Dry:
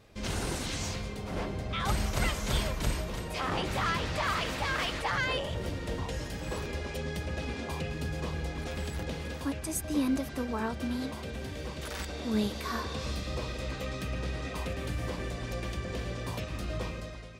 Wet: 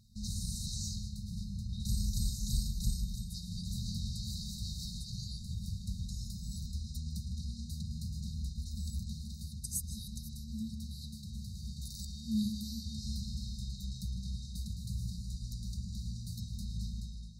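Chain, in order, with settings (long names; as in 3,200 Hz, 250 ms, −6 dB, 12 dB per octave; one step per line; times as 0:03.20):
brick-wall band-stop 230–3,700 Hz
dynamic equaliser 150 Hz, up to −4 dB, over −49 dBFS, Q 4.1
on a send: feedback echo with a low-pass in the loop 156 ms, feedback 49%, low-pass 3,900 Hz, level −9 dB
on the sum: level −2 dB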